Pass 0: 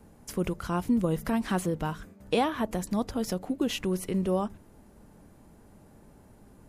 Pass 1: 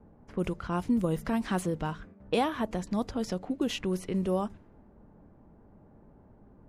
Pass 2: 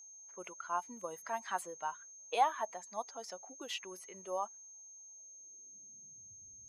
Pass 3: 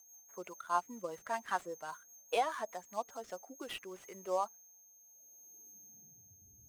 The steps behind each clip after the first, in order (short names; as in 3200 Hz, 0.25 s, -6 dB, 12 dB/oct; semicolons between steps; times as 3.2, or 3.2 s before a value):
low-pass opened by the level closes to 1100 Hz, open at -23 dBFS; gain -1.5 dB
per-bin expansion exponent 1.5; whine 6400 Hz -48 dBFS; high-pass sweep 810 Hz -> 78 Hz, 5.06–6.49; gain -4 dB
median filter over 9 samples; rotary speaker horn 5 Hz, later 0.65 Hz, at 3.19; gain +5 dB